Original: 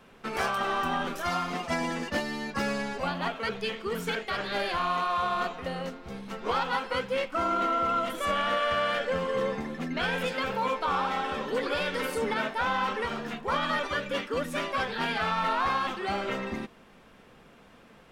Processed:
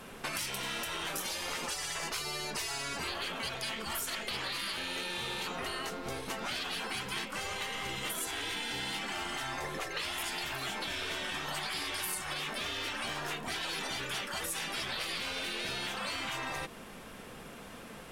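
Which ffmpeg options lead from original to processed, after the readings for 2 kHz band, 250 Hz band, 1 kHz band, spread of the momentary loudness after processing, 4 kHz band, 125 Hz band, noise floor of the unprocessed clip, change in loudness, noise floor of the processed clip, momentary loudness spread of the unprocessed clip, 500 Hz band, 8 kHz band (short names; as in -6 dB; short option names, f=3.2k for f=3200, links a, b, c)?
-4.5 dB, -10.0 dB, -11.5 dB, 3 LU, +1.5 dB, -7.0 dB, -55 dBFS, -6.0 dB, -48 dBFS, 6 LU, -12.0 dB, +8.5 dB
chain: -af "afftfilt=real='re*lt(hypot(re,im),0.0562)':imag='im*lt(hypot(re,im),0.0562)':win_size=1024:overlap=0.75,equalizer=f=11k:t=o:w=1.4:g=11.5,acompressor=threshold=-40dB:ratio=6,volume=6.5dB"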